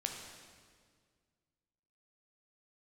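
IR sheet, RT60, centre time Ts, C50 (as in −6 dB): 1.9 s, 56 ms, 3.5 dB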